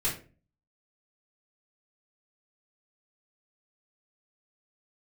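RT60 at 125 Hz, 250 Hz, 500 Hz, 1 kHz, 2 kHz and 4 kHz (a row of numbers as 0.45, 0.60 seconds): 0.60, 0.55, 0.40, 0.30, 0.30, 0.25 seconds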